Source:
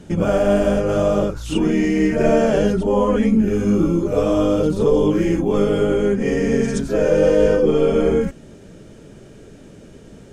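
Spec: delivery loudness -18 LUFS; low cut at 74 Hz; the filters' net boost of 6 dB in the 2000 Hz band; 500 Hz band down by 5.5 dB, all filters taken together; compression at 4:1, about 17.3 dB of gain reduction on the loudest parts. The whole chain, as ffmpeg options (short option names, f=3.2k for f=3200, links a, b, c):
-af "highpass=74,equalizer=f=500:t=o:g=-7,equalizer=f=2k:t=o:g=8,acompressor=threshold=-36dB:ratio=4,volume=18.5dB"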